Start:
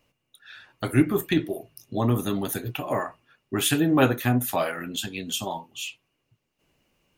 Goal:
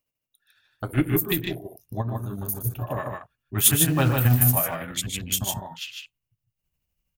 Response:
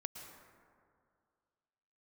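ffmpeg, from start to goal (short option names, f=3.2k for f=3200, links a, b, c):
-filter_complex "[0:a]aemphasis=mode=production:type=50fm,afwtdn=0.02,asubboost=boost=9:cutoff=110,asettb=1/sr,asplit=3[a][b][c];[a]atrim=end=2.014[d];[b]atrim=start=2.01:end=2.64,asetpts=PTS-STARTPTS,afade=t=in:d=0.004:c=qsin,afade=t=out:st=0.626:d=0.004:c=qsin,acompressor=threshold=-26dB:ratio=4[e];[c]atrim=start=2.636[f];[d][e]acrossfade=d=0.004:c1=hsin:c2=qsin[g];[g][f]acrossfade=d=0.004:c1=qsin:c2=hsin,asettb=1/sr,asplit=3[h][i][j];[h]atrim=end=3.614[k];[i]atrim=start=3.61:end=4.61,asetpts=PTS-STARTPTS,afade=t=in:d=0.004:c=qsin,afade=t=out:st=0.996:d=0.004:c=qsin,acrusher=bits=6:mode=log:mix=0:aa=0.000001[l];[j]atrim=start=4.606[m];[k][l]acrossfade=d=0.004:c1=hsin:c2=qsin[n];[n][m]acrossfade=d=0.004:c1=qsin:c2=hsin,tremolo=f=12:d=0.5,asplit=2[o][p];[p]aecho=0:1:119.5|151.6:0.251|0.631[q];[o][q]amix=inputs=2:normalize=0,volume=-1dB"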